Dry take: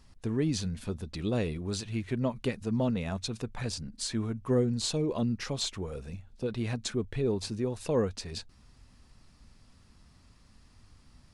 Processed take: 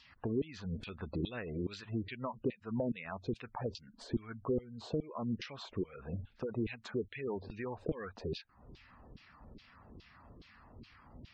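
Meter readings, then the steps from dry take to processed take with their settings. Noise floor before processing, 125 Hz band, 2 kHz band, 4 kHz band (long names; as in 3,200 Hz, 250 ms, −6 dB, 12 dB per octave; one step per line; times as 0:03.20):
−60 dBFS, −9.0 dB, −4.0 dB, −12.5 dB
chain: auto-filter band-pass saw down 2.4 Hz 320–3,500 Hz
gate on every frequency bin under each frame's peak −20 dB strong
high-shelf EQ 2,100 Hz +9.5 dB
downward compressor 3 to 1, threshold −55 dBFS, peak gain reduction 20 dB
RIAA equalisation playback
level +12.5 dB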